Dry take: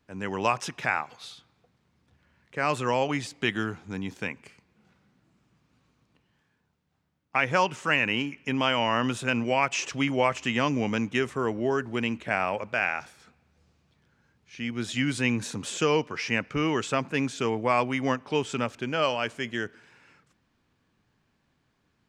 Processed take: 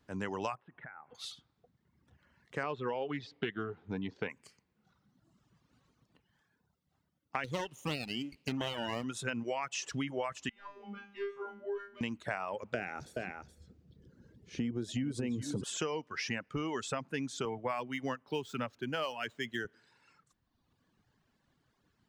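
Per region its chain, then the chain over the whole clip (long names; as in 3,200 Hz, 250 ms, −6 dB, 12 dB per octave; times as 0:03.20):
0:00.55–0:01.15: downward compressor 5 to 1, threshold −39 dBFS + Gaussian smoothing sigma 3.9 samples
0:02.63–0:04.30: low-pass filter 3,900 Hz 24 dB per octave + parametric band 430 Hz +8 dB 0.4 octaves + highs frequency-modulated by the lows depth 0.12 ms
0:07.44–0:09.04: lower of the sound and its delayed copy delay 0.32 ms + high-pass filter 53 Hz
0:10.49–0:12.01: mid-hump overdrive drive 14 dB, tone 2,700 Hz, clips at −11 dBFS + high-frequency loss of the air 130 metres + tuned comb filter 200 Hz, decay 0.83 s, mix 100%
0:12.74–0:15.64: low shelf with overshoot 640 Hz +11 dB, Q 1.5 + downward compressor 2 to 1, threshold −19 dBFS + single-tap delay 423 ms −8.5 dB
0:17.45–0:19.65: running median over 5 samples + dynamic equaliser 2,700 Hz, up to +3 dB, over −37 dBFS, Q 0.85 + multiband upward and downward expander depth 40%
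whole clip: reverb reduction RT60 1.3 s; parametric band 2,400 Hz −6 dB 0.23 octaves; downward compressor 6 to 1, threshold −33 dBFS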